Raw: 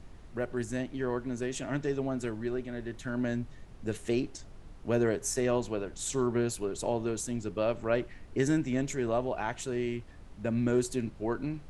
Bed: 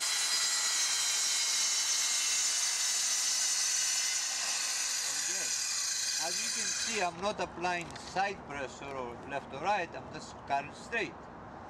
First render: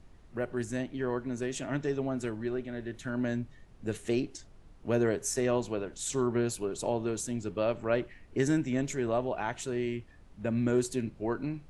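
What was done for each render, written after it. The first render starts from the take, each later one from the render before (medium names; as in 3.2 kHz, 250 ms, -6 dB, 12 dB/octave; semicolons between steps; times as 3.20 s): noise print and reduce 6 dB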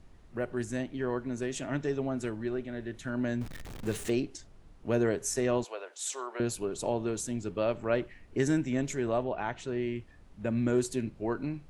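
3.41–4.10 s: jump at every zero crossing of -38 dBFS; 5.64–6.40 s: high-pass 540 Hz 24 dB/octave; 9.23–9.96 s: distance through air 110 m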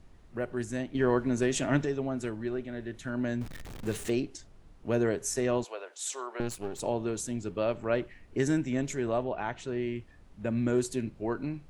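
0.95–1.85 s: gain +6.5 dB; 6.40–6.80 s: partial rectifier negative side -12 dB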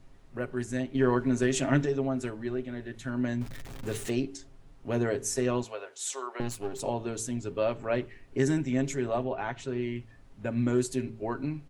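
comb 7.4 ms, depth 48%; de-hum 55.89 Hz, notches 8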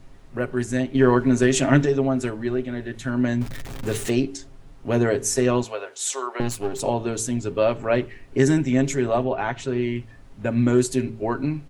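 trim +8 dB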